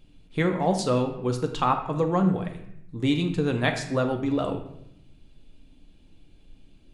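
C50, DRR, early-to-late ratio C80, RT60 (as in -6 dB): 8.5 dB, 4.0 dB, 11.0 dB, 0.75 s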